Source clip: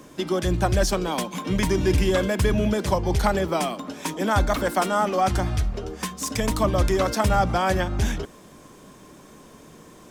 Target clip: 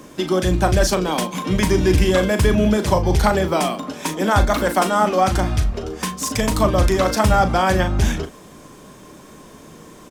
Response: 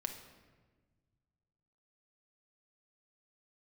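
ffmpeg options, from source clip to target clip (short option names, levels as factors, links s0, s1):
-filter_complex "[0:a]asplit=2[s0][s1];[s1]adelay=38,volume=0.355[s2];[s0][s2]amix=inputs=2:normalize=0,volume=1.68"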